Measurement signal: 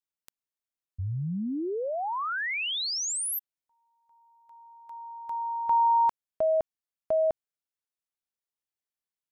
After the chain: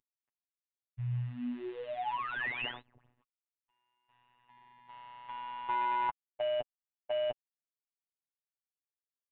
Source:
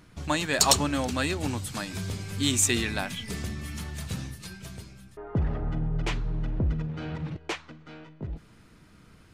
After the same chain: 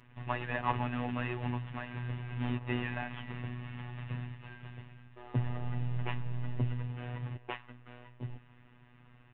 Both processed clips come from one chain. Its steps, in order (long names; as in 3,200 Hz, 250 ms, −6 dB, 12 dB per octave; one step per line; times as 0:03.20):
variable-slope delta modulation 16 kbit/s
phases set to zero 122 Hz
comb filter 7.1 ms, depth 40%
level −3.5 dB